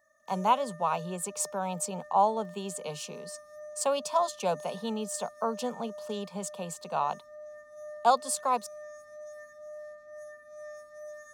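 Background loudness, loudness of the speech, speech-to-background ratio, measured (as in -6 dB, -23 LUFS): -46.5 LUFS, -31.0 LUFS, 15.5 dB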